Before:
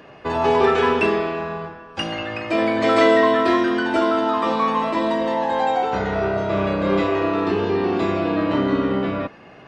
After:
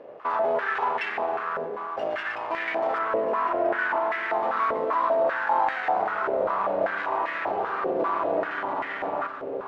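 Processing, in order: 2.98–4.3 CVSD 16 kbps; in parallel at -0.5 dB: compressor, threshold -31 dBFS, peak gain reduction 17.5 dB; on the sum: limiter -12 dBFS, peak gain reduction 7.5 dB; half-wave rectifier; on a send: echo with dull and thin repeats by turns 0.646 s, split 1300 Hz, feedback 67%, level -7 dB; on the sum: stepped band-pass 5.1 Hz 520–1900 Hz; gain +7.5 dB

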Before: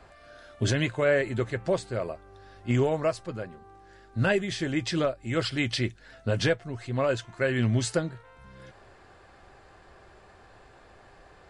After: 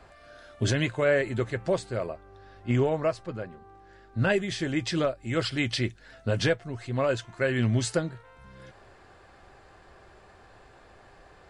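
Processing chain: 2.06–4.3 high shelf 6400 Hz -10.5 dB

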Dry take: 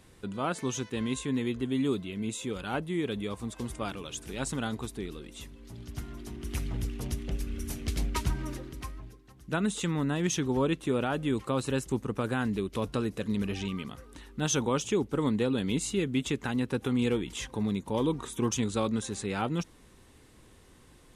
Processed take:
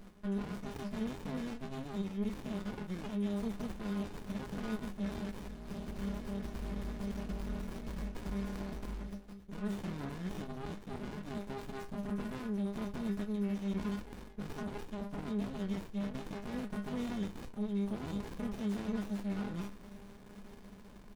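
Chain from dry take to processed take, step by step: metallic resonator 200 Hz, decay 0.28 s, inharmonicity 0.002; in parallel at +1 dB: vocal rider within 3 dB 0.5 s; on the sum: high shelf 3900 Hz +6.5 dB; reverse; compressor 16:1, threshold -45 dBFS, peak gain reduction 22 dB; reverse; limiter -41 dBFS, peak gain reduction 5.5 dB; comb 4.2 ms, depth 66%; running maximum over 65 samples; gain +12 dB

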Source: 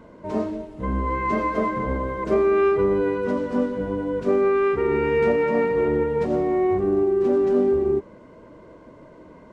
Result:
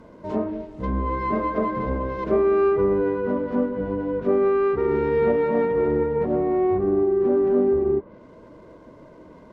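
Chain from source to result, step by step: median filter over 15 samples; treble ducked by the level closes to 1800 Hz, closed at -21 dBFS

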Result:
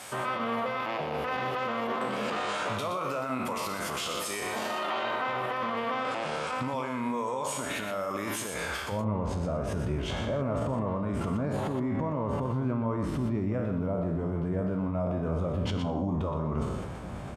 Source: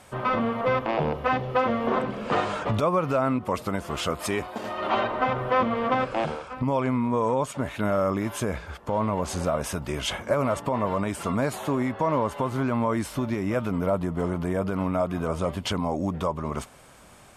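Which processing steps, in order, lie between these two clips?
spectral trails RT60 0.59 s; tilt +2.5 dB/oct, from 8.91 s -3.5 dB/oct; limiter -29 dBFS, peak gain reduction 20.5 dB; HPF 73 Hz; high shelf 8700 Hz -5 dB; echo 0.121 s -7.5 dB; sustainer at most 44 dB/s; gain +5 dB

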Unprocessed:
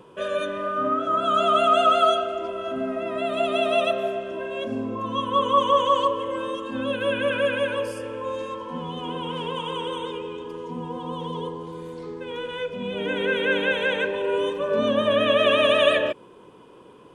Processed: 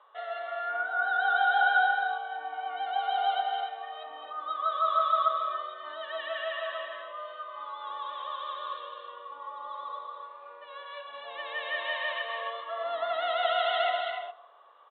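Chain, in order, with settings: elliptic low-pass 3100 Hz, stop band 40 dB; varispeed +15%; ladder high-pass 780 Hz, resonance 60%; tapped delay 0.211/0.263/0.286/0.293 s -8/-9/-12/-11 dB; on a send at -17 dB: reverb RT60 1.5 s, pre-delay 3 ms

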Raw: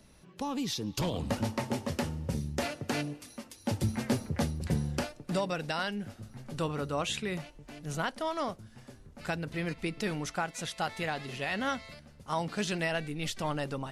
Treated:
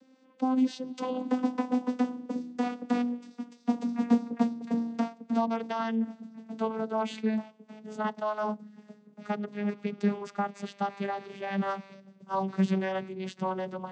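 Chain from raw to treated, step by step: vocoder on a gliding note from C4, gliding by -6 st; dynamic EQ 920 Hz, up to +7 dB, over -54 dBFS, Q 1.7; gain +3.5 dB

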